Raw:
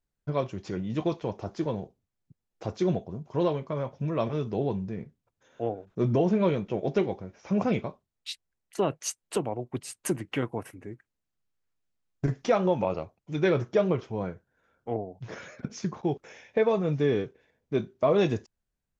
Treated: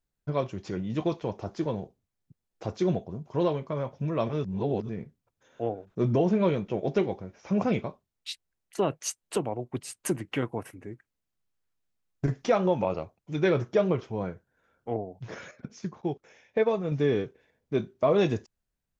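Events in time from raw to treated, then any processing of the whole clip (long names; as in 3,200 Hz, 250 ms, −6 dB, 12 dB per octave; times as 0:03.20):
0:04.44–0:04.89: reverse
0:15.51–0:16.92: expander for the loud parts, over −35 dBFS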